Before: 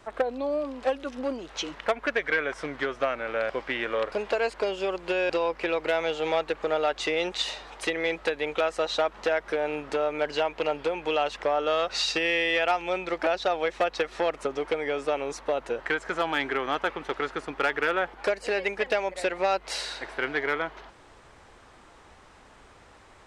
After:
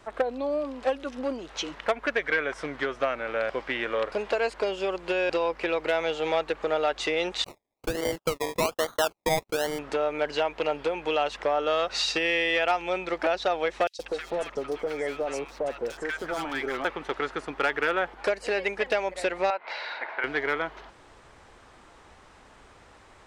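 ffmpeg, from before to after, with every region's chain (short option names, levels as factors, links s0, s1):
-filter_complex "[0:a]asettb=1/sr,asplit=3[s0][s1][s2];[s0]atrim=end=7.444[s3];[s1]atrim=start=7.44:end=9.79,asetpts=PTS-STARTPTS,afade=t=in:d=0.004:c=qsin,afade=t=out:st=2.346:d=0.004:c=qsin,highpass=110,lowpass=2200,agate=range=0.01:threshold=0.0112:ratio=16:release=100:detection=peak,acrusher=samples=24:mix=1:aa=0.000001:lfo=1:lforange=14.4:lforate=1.2[s4];[s2]atrim=start=9.786[s5];[s3][s4]acrossfade=d=0.004:c1=hsin:c2=qsin[s6];[s6][s5]acrossfade=d=0.004:c1=qsin:c2=hsin,asettb=1/sr,asplit=3[s7][s8][s9];[s7]atrim=end=13.874[s10];[s8]atrim=start=13.87:end=16.85,asetpts=PTS-STARTPTS,afade=t=in:d=0.004:c=qsin,afade=t=out:st=2.976:d=0.004:c=qsin,asoftclip=type=hard:threshold=0.0708,acrossover=split=1100|4000[s11][s12][s13];[s11]adelay=120[s14];[s12]adelay=190[s15];[s14][s15][s13]amix=inputs=3:normalize=0,atrim=end_sample=131418[s16];[s9]atrim=start=16.846[s17];[s10][s16]acrossfade=d=0.004:c1=hsin:c2=qsin[s18];[s18][s17]acrossfade=d=0.004:c1=qsin:c2=hsin,asettb=1/sr,asplit=3[s19][s20][s21];[s19]atrim=end=19.504[s22];[s20]atrim=start=19.5:end=20.24,asetpts=PTS-STARTPTS,afade=t=in:d=0.004:c=qsin,afade=t=out:st=0.736:d=0.004:c=qsin,acompressor=threshold=0.0316:ratio=2.5:attack=3.2:release=140:knee=1:detection=peak,highpass=380,equalizer=f=400:t=q:w=4:g=-4,equalizer=f=620:t=q:w=4:g=4,equalizer=f=910:t=q:w=4:g=8,equalizer=f=1500:t=q:w=4:g=5,equalizer=f=2200:t=q:w=4:g=7,equalizer=f=3100:t=q:w=4:g=-4,lowpass=f=3600:w=0.5412,lowpass=f=3600:w=1.3066[s23];[s21]atrim=start=20.236[s24];[s22][s23]acrossfade=d=0.004:c1=hsin:c2=qsin[s25];[s25][s24]acrossfade=d=0.004:c1=qsin:c2=hsin"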